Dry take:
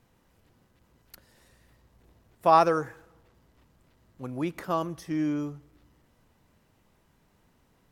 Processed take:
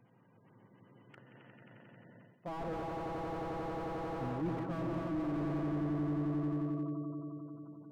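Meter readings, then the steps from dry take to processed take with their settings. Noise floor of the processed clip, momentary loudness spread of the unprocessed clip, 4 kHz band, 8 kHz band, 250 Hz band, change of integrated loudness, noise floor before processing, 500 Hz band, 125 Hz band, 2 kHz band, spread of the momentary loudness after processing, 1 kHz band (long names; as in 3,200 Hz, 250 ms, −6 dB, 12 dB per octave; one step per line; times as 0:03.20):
−65 dBFS, 18 LU, −11.0 dB, below −10 dB, −2.0 dB, −10.5 dB, −67 dBFS, −9.5 dB, +2.0 dB, −8.5 dB, 10 LU, −14.0 dB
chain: on a send: echo that builds up and dies away 89 ms, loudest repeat 5, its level −6 dB
on the sum: gate on every frequency bin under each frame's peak −20 dB strong
low-shelf EQ 140 Hz +5 dB
reversed playback
downward compressor 10 to 1, threshold −30 dBFS, peak gain reduction 17 dB
reversed playback
brick-wall band-pass 100–3,400 Hz
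slew-rate limiting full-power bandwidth 7.9 Hz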